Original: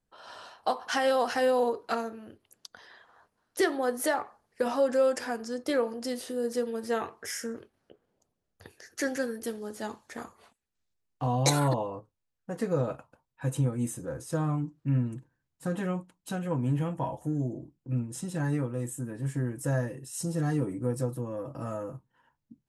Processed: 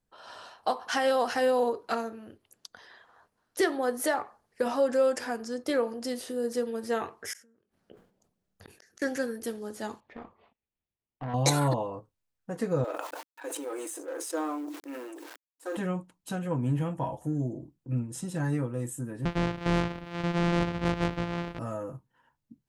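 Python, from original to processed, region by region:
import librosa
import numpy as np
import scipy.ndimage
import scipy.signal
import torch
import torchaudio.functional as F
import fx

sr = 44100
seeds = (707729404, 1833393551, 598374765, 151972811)

y = fx.chain(x, sr, fx.peak_eq(hz=190.0, db=8.5, octaves=0.39),
    fx.gate_flip(shuts_db=-35.0, range_db=-32),
    fx.sustainer(db_per_s=110.0), at=(7.33, 9.02))
y = fx.chain(y, sr, fx.lowpass(hz=3000.0, slope=24),
    fx.peak_eq(hz=1500.0, db=-9.0, octaves=0.6),
    fx.tube_stage(drive_db=31.0, bias=0.55), at=(10.0, 11.34))
y = fx.chain(y, sr, fx.law_mismatch(coded='A'),
    fx.brickwall_highpass(low_hz=280.0),
    fx.sustainer(db_per_s=23.0), at=(12.84, 15.77))
y = fx.chain(y, sr, fx.sample_sort(block=256),
    fx.cheby1_lowpass(hz=2900.0, order=2),
    fx.leveller(passes=1), at=(19.25, 21.59))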